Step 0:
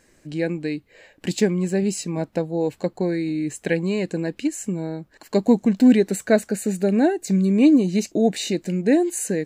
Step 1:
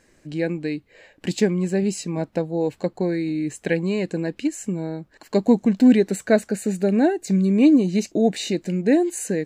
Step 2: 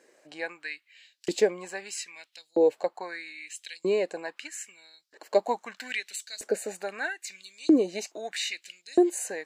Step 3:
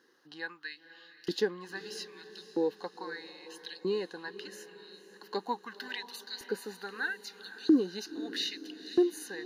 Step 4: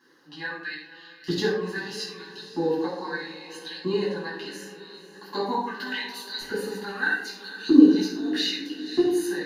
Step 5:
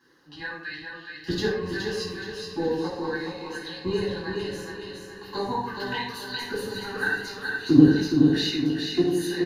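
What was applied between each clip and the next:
high-shelf EQ 9,400 Hz −7 dB
auto-filter high-pass saw up 0.78 Hz 380–5,500 Hz; level −3.5 dB
phaser with its sweep stopped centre 2,300 Hz, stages 6; feedback delay with all-pass diffusion 505 ms, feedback 52%, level −14.5 dB
rectangular room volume 900 cubic metres, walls furnished, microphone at 9.5 metres; level −2.5 dB
sub-octave generator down 1 octave, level −6 dB; on a send: repeating echo 421 ms, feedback 42%, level −5 dB; on the sum: level −1.5 dB

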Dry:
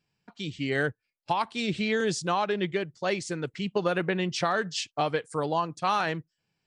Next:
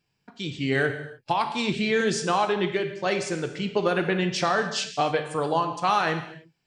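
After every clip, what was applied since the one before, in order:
reverb whose tail is shaped and stops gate 330 ms falling, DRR 6 dB
level +2.5 dB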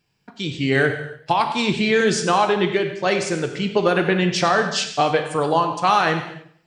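feedback echo with a swinging delay time 94 ms, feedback 37%, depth 98 cents, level −15.5 dB
level +5.5 dB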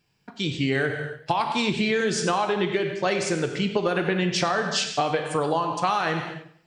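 downward compressor, threshold −20 dBFS, peak gain reduction 8 dB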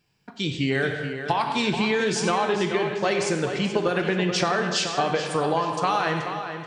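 tape delay 430 ms, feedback 44%, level −8 dB, low-pass 4,500 Hz

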